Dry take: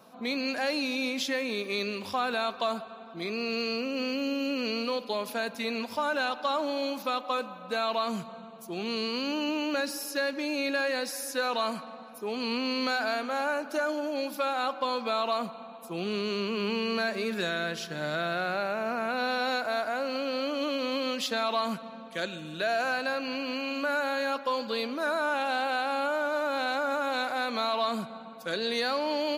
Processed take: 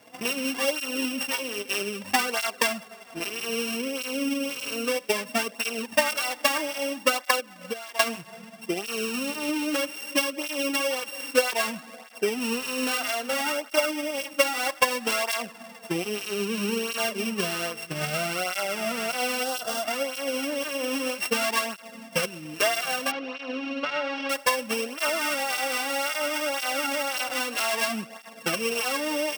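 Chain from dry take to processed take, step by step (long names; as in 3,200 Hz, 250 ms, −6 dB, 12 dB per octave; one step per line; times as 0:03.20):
samples sorted by size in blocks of 16 samples
0:07.40–0:08.00: downward compressor 6 to 1, threshold −38 dBFS, peak gain reduction 12.5 dB
0:19.43–0:19.84: parametric band 2,200 Hz −15 dB 0.45 octaves
0:23.11–0:24.30: Bessel low-pass filter 3,100 Hz, order 6
transient designer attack +10 dB, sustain −4 dB
through-zero flanger with one copy inverted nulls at 0.62 Hz, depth 5.6 ms
level +4 dB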